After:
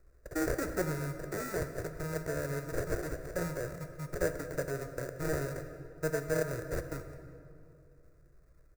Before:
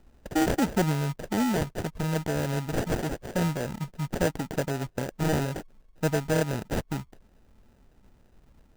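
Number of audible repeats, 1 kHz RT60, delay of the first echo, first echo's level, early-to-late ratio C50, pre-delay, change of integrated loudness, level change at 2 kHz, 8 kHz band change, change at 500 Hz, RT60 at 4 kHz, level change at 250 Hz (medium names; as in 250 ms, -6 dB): 1, 2.4 s, 180 ms, -20.5 dB, 9.0 dB, 10 ms, -7.5 dB, -4.5 dB, -5.5 dB, -4.0 dB, 1.6 s, -11.0 dB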